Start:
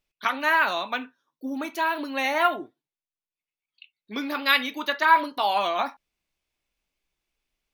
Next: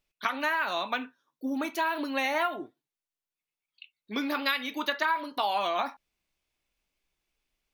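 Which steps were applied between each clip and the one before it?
compressor 10:1, threshold -24 dBFS, peak gain reduction 12.5 dB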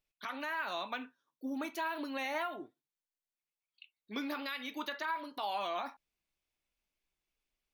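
limiter -20 dBFS, peak gain reduction 8 dB; gain -7 dB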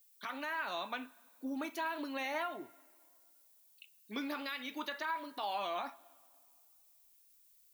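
added noise violet -65 dBFS; on a send at -22.5 dB: reverb RT60 2.2 s, pre-delay 22 ms; on the sum: gain -1 dB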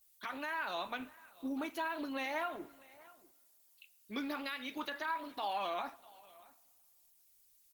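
echo 0.645 s -21.5 dB; gain +1 dB; Opus 16 kbps 48000 Hz

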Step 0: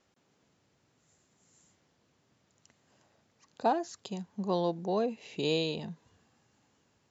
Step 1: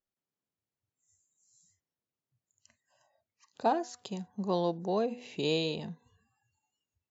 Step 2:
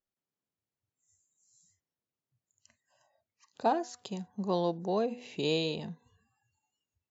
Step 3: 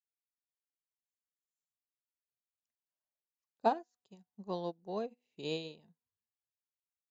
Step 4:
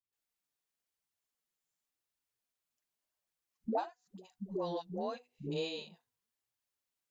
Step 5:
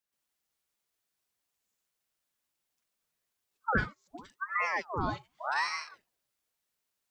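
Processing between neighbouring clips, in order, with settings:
de-hum 245.3 Hz, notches 8; spectral noise reduction 25 dB
nothing audible
upward expander 2.5:1, over -46 dBFS
dispersion highs, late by 0.128 s, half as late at 390 Hz; flange 0.91 Hz, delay 0.6 ms, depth 6.8 ms, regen -31%; compressor 3:1, threshold -44 dBFS, peak gain reduction 12 dB; gain +9.5 dB
ring modulator with a swept carrier 970 Hz, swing 65%, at 0.87 Hz; gain +8.5 dB

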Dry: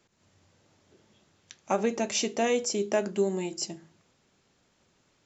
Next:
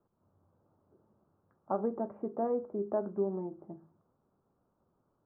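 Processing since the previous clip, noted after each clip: steep low-pass 1300 Hz 48 dB/oct; gain -5.5 dB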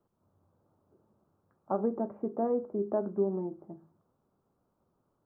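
dynamic EQ 260 Hz, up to +4 dB, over -42 dBFS, Q 0.73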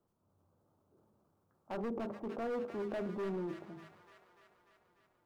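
hard clip -30.5 dBFS, distortion -7 dB; transient shaper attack -3 dB, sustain +7 dB; thin delay 0.295 s, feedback 66%, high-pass 1500 Hz, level -3.5 dB; gain -3.5 dB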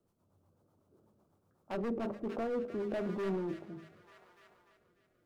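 rotary speaker horn 8 Hz, later 0.85 Hz, at 1.6; on a send at -22.5 dB: reverb RT60 0.30 s, pre-delay 10 ms; on the sum: gain +4.5 dB

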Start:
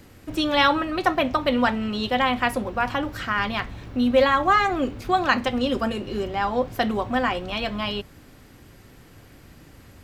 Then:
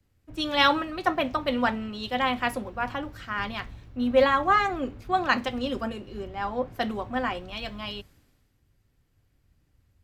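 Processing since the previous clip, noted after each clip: three-band expander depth 70%; gain -5 dB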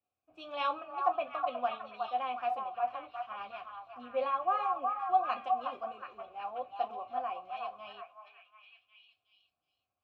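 flange 1.5 Hz, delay 9 ms, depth 3.8 ms, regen -50%; vowel filter a; delay with a stepping band-pass 0.366 s, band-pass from 1000 Hz, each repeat 0.7 oct, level -2 dB; gain +3 dB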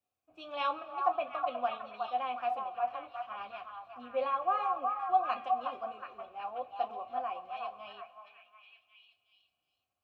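reverb RT60 2.1 s, pre-delay 0.105 s, DRR 19.5 dB

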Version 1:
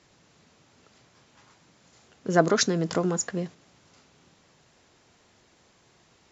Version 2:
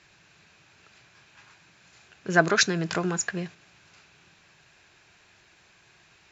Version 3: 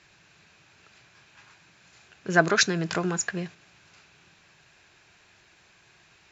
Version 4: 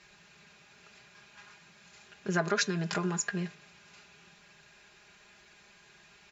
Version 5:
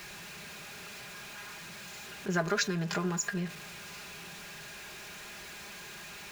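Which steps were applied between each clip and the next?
thirty-one-band EQ 250 Hz -11 dB, 500 Hz -7 dB, 1600 Hz +9 dB, 2500 Hz +11 dB, 4000 Hz +4 dB
nothing audible
comb 4.9 ms, depth 69%; de-hum 146.5 Hz, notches 25; compressor 2:1, threshold -30 dBFS, peak gain reduction 9 dB; gain -1.5 dB
zero-crossing step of -40 dBFS; gain -1.5 dB

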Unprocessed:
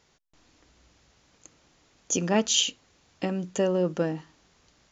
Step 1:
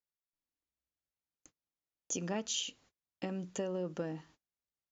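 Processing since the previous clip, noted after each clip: gate -52 dBFS, range -32 dB; compressor 4:1, threshold -26 dBFS, peak gain reduction 7.5 dB; gain -7.5 dB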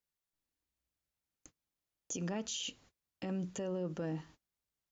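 low shelf 170 Hz +6.5 dB; limiter -33 dBFS, peak gain reduction 10 dB; gain +2.5 dB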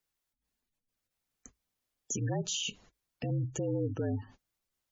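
spectral gate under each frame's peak -20 dB strong; frequency shift -55 Hz; gain +5.5 dB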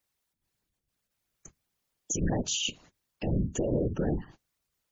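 whisperiser; gain +4 dB

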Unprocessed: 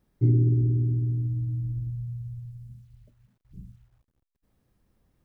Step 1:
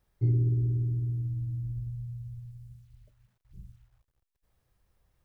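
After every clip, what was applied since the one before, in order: bell 240 Hz -14 dB 1.3 oct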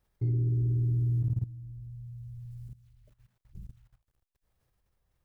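level quantiser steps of 16 dB; gain +5.5 dB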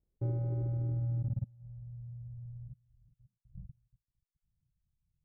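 FFT order left unsorted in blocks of 64 samples; reverb removal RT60 0.58 s; low-pass sweep 400 Hz -> 160 Hz, 0.52–1.97; gain -4.5 dB

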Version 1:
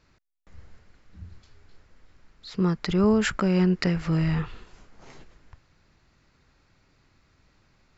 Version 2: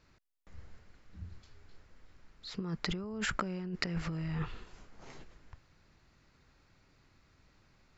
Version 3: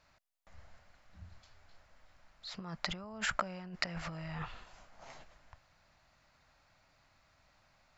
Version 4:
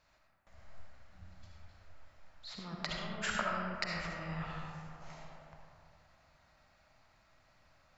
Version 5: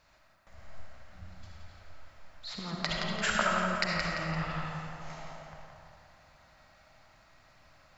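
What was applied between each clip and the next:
negative-ratio compressor -28 dBFS, ratio -1; gain -8 dB
resonant low shelf 510 Hz -6.5 dB, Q 3
digital reverb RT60 2.5 s, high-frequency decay 0.35×, pre-delay 25 ms, DRR -2 dB; gain -3 dB
thinning echo 0.171 s, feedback 47%, level -5.5 dB; gain +6 dB

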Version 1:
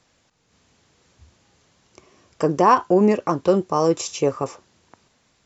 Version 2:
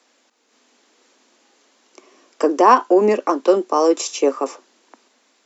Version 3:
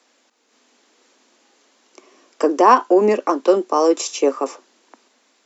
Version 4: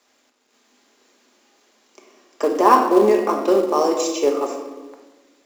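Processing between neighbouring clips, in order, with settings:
steep high-pass 230 Hz 72 dB/oct; gain +3.5 dB
nothing audible
shoebox room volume 850 m³, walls mixed, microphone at 1.3 m; in parallel at -10.5 dB: companded quantiser 4-bit; on the sum: gain -6 dB

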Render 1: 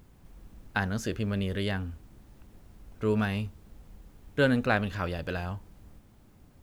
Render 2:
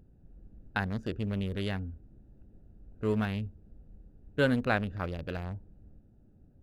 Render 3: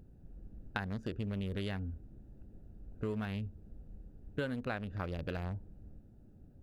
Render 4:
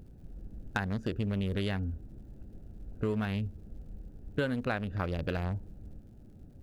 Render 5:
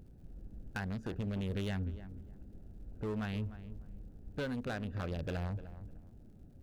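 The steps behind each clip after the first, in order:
Wiener smoothing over 41 samples; gain -2 dB
compressor 6:1, threshold -36 dBFS, peak gain reduction 14.5 dB; gain +2 dB
hard clip -24 dBFS, distortion -30 dB; crackle 110/s -65 dBFS; gain +5.5 dB
hard clip -28.5 dBFS, distortion -13 dB; darkening echo 0.301 s, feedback 23%, low-pass 1600 Hz, level -13 dB; gain -4 dB

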